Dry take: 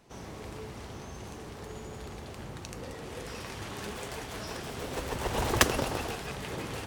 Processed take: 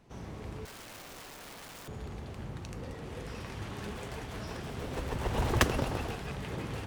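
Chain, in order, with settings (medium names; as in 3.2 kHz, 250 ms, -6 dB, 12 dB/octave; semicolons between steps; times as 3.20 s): tone controls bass +6 dB, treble -5 dB; 0.65–1.88 s: integer overflow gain 40 dB; trim -3 dB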